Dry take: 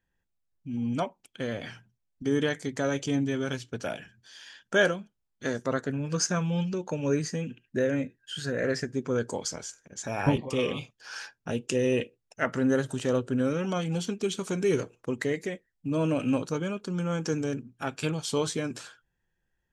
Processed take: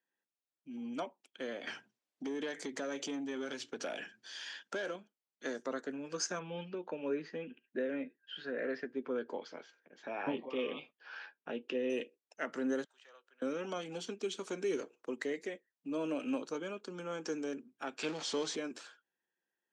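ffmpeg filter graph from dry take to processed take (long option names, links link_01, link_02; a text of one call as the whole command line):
ffmpeg -i in.wav -filter_complex "[0:a]asettb=1/sr,asplit=3[link_01][link_02][link_03];[link_01]atrim=end=1.674[link_04];[link_02]atrim=start=1.67:end=4.96,asetpts=PTS-STARTPTS,afade=type=in:duration=0.004:curve=qsin,afade=type=out:start_time=3.286:duration=0.004:curve=qsin,acompressor=threshold=-36dB:ratio=5:attack=3.2:release=140:knee=1:detection=peak,aeval=exprs='0.0631*sin(PI/2*2*val(0)/0.0631)':channel_layout=same[link_05];[link_03]atrim=start=4.956[link_06];[link_04][link_05]acrossfade=duration=0.004:curve1=hsin:curve2=qsin[link_07];[link_07][link_06]acrossfade=duration=0.004:curve1=qsin:curve2=hsin,asettb=1/sr,asplit=3[link_08][link_09][link_10];[link_08]atrim=end=6.394[link_11];[link_09]atrim=start=6.39:end=11.9,asetpts=PTS-STARTPTS,afade=type=in:duration=0.004:curve=qsin,afade=type=out:start_time=5.506:duration=0.004:curve=qsin,lowpass=frequency=3500:width=0.5412,lowpass=frequency=3500:width=1.3066,asplit=2[link_12][link_13];[link_13]adelay=12,volume=-14dB[link_14];[link_12][link_14]amix=inputs=2:normalize=0,atrim=end_sample=242991[link_15];[link_10]atrim=start=11.896[link_16];[link_11][link_15]acrossfade=duration=0.004:curve1=hsin:curve2=qsin[link_17];[link_17][link_16]acrossfade=duration=0.004:curve1=qsin:curve2=hsin,asettb=1/sr,asplit=3[link_18][link_19][link_20];[link_18]atrim=end=12.844[link_21];[link_19]atrim=start=12.84:end=13.42,asetpts=PTS-STARTPTS,afade=type=in:duration=0.004:curve=qsin,afade=type=out:start_time=0.576:duration=0.004:curve=qsin,highpass=660,lowpass=2200,aderivative[link_22];[link_20]atrim=start=13.416[link_23];[link_21][link_22]acrossfade=duration=0.004:curve1=hsin:curve2=qsin[link_24];[link_24][link_23]acrossfade=duration=0.004:curve1=qsin:curve2=hsin,asettb=1/sr,asplit=3[link_25][link_26][link_27];[link_25]atrim=end=17.994[link_28];[link_26]atrim=start=17.99:end=18.56,asetpts=PTS-STARTPTS,afade=type=in:duration=0.004:curve=qsin,afade=type=out:start_time=0.566:duration=0.004:curve=qsin,aeval=exprs='val(0)+0.5*0.0299*sgn(val(0))':channel_layout=same,lowpass=frequency=7400:width=0.5412,lowpass=frequency=7400:width=1.3066[link_29];[link_27]atrim=start=18.556[link_30];[link_28][link_29]acrossfade=duration=0.004:curve1=hsin:curve2=qsin[link_31];[link_31][link_30]acrossfade=duration=0.004:curve1=qsin:curve2=hsin,lowpass=6700,acrossover=split=340|3000[link_32][link_33][link_34];[link_33]acompressor=threshold=-29dB:ratio=6[link_35];[link_32][link_35][link_34]amix=inputs=3:normalize=0,highpass=frequency=260:width=0.5412,highpass=frequency=260:width=1.3066,volume=-6.5dB" out.wav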